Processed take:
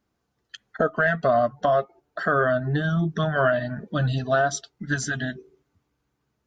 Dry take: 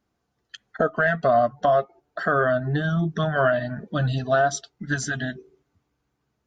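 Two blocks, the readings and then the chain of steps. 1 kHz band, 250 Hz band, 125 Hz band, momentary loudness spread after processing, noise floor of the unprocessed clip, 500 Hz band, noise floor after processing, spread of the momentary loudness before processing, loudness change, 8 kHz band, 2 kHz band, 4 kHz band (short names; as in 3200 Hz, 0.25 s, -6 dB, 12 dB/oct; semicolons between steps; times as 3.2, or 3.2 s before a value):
-1.5 dB, 0.0 dB, 0.0 dB, 9 LU, -76 dBFS, -1.0 dB, -76 dBFS, 10 LU, -0.5 dB, 0.0 dB, 0.0 dB, 0.0 dB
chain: bell 720 Hz -3 dB 0.2 oct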